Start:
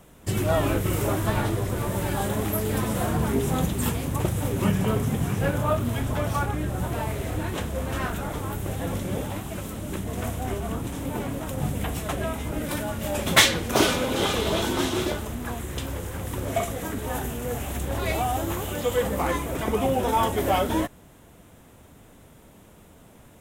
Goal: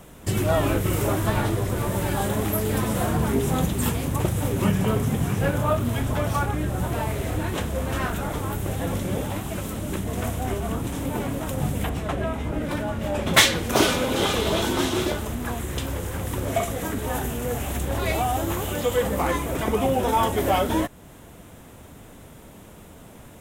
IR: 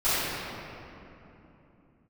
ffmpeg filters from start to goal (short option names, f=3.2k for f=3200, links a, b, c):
-filter_complex "[0:a]asettb=1/sr,asplit=3[a][b][c];[a]atrim=end=11.894[d];[b]atrim=start=11.89:end=13.34,asetpts=PTS-STARTPTS,afade=t=in:d=0.004:c=qsin,afade=t=out:st=1.446:d=0.004:c=qsin,lowpass=f=2.4k:p=1[e];[c]atrim=start=13.336[f];[d][e]acrossfade=d=0.004:c1=hsin:c2=qsin[g];[g][f]acrossfade=d=0.004:c1=qsin:c2=hsin,asplit=2[h][i];[i]acompressor=threshold=-36dB:ratio=6,volume=-0.5dB[j];[h][j]amix=inputs=2:normalize=0"